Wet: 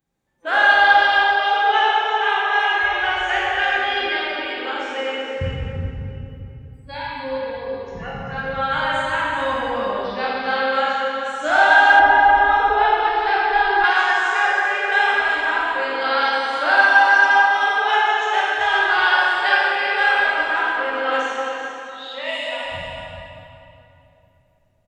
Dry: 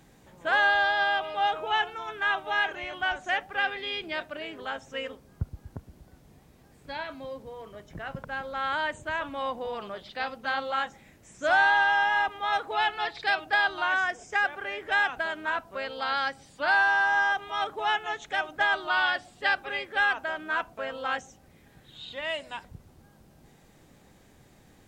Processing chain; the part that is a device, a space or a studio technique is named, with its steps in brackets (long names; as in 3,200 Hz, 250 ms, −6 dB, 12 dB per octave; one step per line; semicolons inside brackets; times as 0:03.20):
noise reduction from a noise print of the clip's start 27 dB
cave (single-tap delay 388 ms −9 dB; convolution reverb RT60 3.0 s, pre-delay 16 ms, DRR −7 dB)
0:11.99–0:13.84: spectral tilt −4 dB per octave
level +2 dB